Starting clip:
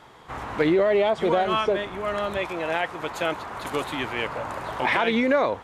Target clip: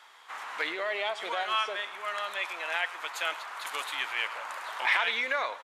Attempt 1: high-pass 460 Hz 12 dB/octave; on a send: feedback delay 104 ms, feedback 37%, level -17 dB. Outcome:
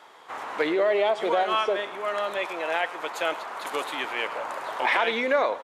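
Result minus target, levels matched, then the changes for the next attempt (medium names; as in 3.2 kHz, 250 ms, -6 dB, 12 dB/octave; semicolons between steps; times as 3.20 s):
500 Hz band +8.5 dB
change: high-pass 1.3 kHz 12 dB/octave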